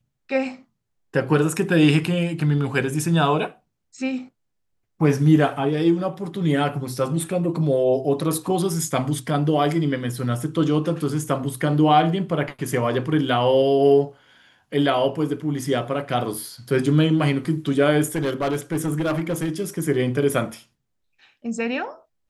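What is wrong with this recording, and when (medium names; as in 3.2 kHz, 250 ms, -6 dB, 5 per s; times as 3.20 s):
18.15–19.49 s: clipped -18.5 dBFS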